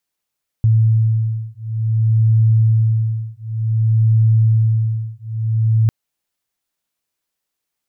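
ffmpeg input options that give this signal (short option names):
-f lavfi -i "aevalsrc='0.178*(sin(2*PI*111*t)+sin(2*PI*111.55*t))':d=5.25:s=44100"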